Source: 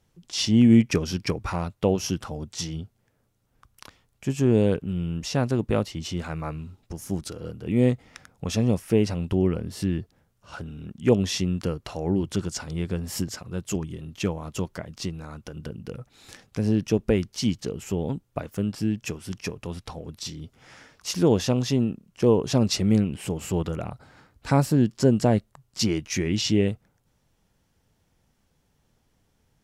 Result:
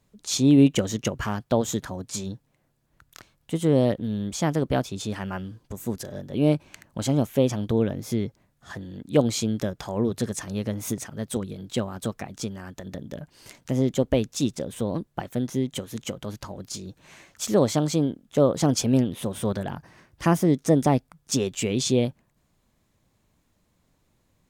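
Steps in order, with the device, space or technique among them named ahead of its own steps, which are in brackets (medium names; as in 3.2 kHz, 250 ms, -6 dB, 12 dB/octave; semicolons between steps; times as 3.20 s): nightcore (tape speed +21%)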